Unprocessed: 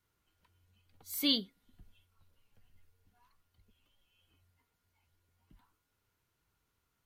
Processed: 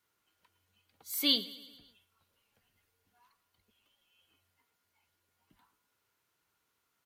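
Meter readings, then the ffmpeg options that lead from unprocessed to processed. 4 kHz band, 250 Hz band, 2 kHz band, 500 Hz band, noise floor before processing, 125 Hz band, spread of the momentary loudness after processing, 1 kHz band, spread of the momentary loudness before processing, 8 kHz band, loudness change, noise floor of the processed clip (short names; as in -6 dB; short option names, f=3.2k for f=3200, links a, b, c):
+3.0 dB, -2.0 dB, +3.0 dB, +1.0 dB, -82 dBFS, n/a, 13 LU, +2.5 dB, 7 LU, +3.0 dB, +2.5 dB, -80 dBFS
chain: -af "highpass=f=410:p=1,aecho=1:1:110|220|330|440|550:0.126|0.073|0.0424|0.0246|0.0142,volume=3dB"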